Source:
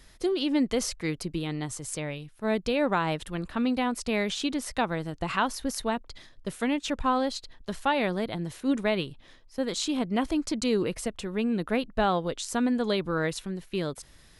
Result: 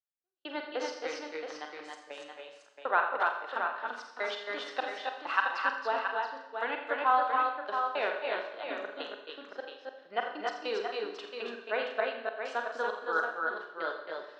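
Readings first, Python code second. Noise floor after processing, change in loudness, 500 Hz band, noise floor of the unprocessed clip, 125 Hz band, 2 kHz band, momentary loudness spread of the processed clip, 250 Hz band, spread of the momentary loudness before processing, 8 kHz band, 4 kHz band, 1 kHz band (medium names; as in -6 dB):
-56 dBFS, -4.0 dB, -5.0 dB, -55 dBFS, under -30 dB, +2.0 dB, 15 LU, -20.5 dB, 8 LU, under -15 dB, -7.5 dB, +0.5 dB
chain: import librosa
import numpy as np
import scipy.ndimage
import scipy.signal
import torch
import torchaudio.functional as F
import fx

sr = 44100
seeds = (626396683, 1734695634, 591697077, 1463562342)

p1 = fx.spec_quant(x, sr, step_db=15)
p2 = fx.add_hum(p1, sr, base_hz=60, snr_db=23)
p3 = fx.step_gate(p2, sr, bpm=100, pattern='...x.x.x..x.x.xx', floor_db=-60.0, edge_ms=4.5)
p4 = fx.cabinet(p3, sr, low_hz=500.0, low_slope=24, high_hz=3900.0, hz=(530.0, 1500.0, 2200.0, 3400.0), db=(-3, 6, -7, -5))
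p5 = p4 + fx.echo_multitap(p4, sr, ms=(46, 82, 269, 288, 674, 711), db=(-9.0, -12.0, -7.0, -3.5, -7.0, -12.5), dry=0)
y = fx.rev_schroeder(p5, sr, rt60_s=0.9, comb_ms=30, drr_db=5.5)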